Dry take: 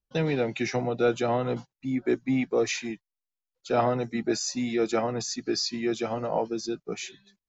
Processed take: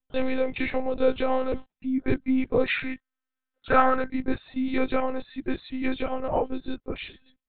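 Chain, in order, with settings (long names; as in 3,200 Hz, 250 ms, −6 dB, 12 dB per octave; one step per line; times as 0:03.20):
0:02.68–0:04.09: parametric band 1,500 Hz +14.5 dB 0.69 octaves
one-pitch LPC vocoder at 8 kHz 260 Hz
level +2 dB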